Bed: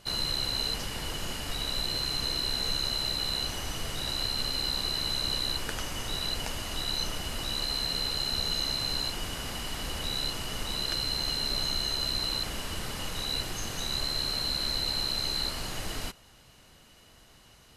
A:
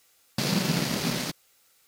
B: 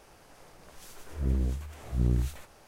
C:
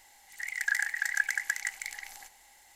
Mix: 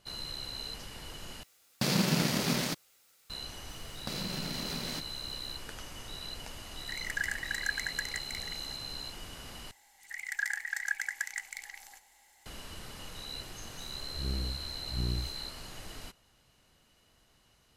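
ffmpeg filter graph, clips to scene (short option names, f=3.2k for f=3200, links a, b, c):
-filter_complex "[1:a]asplit=2[a][b];[3:a]asplit=2[c][d];[0:a]volume=-10dB[e];[b]acompressor=threshold=-34dB:ratio=6:attack=3.2:release=140:knee=1:detection=peak[f];[e]asplit=3[g][h][i];[g]atrim=end=1.434[j];[a]atrim=end=1.87,asetpts=PTS-STARTPTS,volume=-2dB[k];[h]atrim=start=3.296:end=9.714[l];[d]atrim=end=2.75,asetpts=PTS-STARTPTS,volume=-4.5dB[m];[i]atrim=start=12.456[n];[f]atrim=end=1.87,asetpts=PTS-STARTPTS,volume=-1dB,afade=t=in:d=0.004:c=hsin,afade=t=out:st=1.866:d=0.004:c=hsin,adelay=162729S[o];[c]atrim=end=2.75,asetpts=PTS-STARTPTS,volume=-5dB,afade=t=in:d=0.004:c=hsin,afade=t=out:st=2.746:d=0.004:c=hsin,adelay=6490[p];[2:a]atrim=end=2.67,asetpts=PTS-STARTPTS,volume=-7dB,afade=t=in:d=0.004:c=hsin,afade=t=out:st=2.666:d=0.004:c=hsin,adelay=12990[q];[j][k]acrossfade=d=0.004:c1=hsin:c2=hsin[r];[r][l]acrossfade=d=0.004:c1=hsin:c2=hsin[s];[s][m]acrossfade=d=0.004:c1=hsin:c2=hsin[t];[t][n]acrossfade=d=0.004:c1=hsin:c2=hsin[u];[u][o][p][q]amix=inputs=4:normalize=0"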